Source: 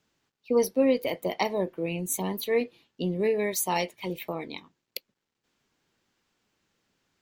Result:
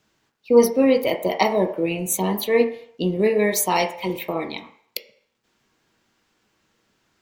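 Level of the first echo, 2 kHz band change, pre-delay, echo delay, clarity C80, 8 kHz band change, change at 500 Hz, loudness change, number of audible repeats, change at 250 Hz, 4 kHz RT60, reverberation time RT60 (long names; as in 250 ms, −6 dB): no echo audible, +7.5 dB, 3 ms, no echo audible, 13.5 dB, +6.5 dB, +7.5 dB, +7.5 dB, no echo audible, +7.5 dB, 0.60 s, 0.60 s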